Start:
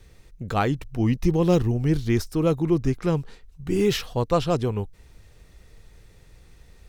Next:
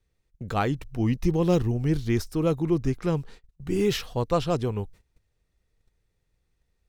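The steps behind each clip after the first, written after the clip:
noise gate −42 dBFS, range −20 dB
level −2.5 dB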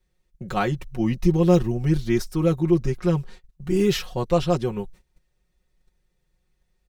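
comb filter 5.5 ms, depth 88%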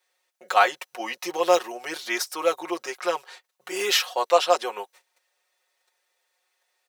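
high-pass filter 610 Hz 24 dB per octave
level +8 dB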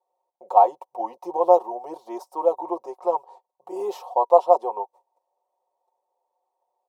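drawn EQ curve 200 Hz 0 dB, 960 Hz +13 dB, 1,500 Hz −27 dB, 9,000 Hz −16 dB
level −5 dB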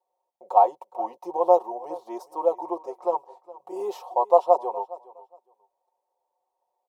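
repeating echo 414 ms, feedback 19%, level −19.5 dB
level −2 dB

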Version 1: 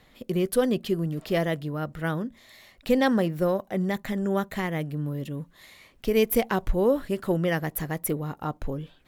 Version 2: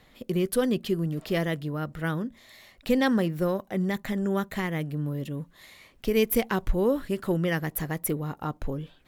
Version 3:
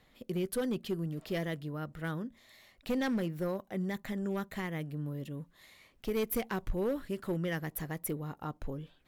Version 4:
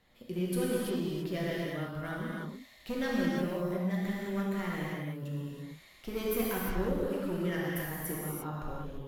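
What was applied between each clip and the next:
dynamic equaliser 660 Hz, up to −5 dB, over −36 dBFS, Q 1.6
hard clipping −19 dBFS, distortion −16 dB; level −7.5 dB
reverb whose tail is shaped and stops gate 370 ms flat, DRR −6 dB; level −4.5 dB

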